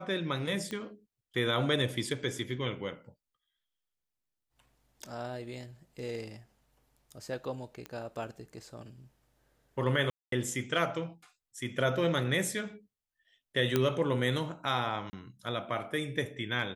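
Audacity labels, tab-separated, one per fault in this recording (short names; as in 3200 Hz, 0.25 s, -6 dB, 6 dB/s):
0.710000	0.710000	pop -24 dBFS
7.860000	7.860000	pop -25 dBFS
10.100000	10.320000	gap 0.223 s
13.760000	13.760000	pop -12 dBFS
15.100000	15.130000	gap 30 ms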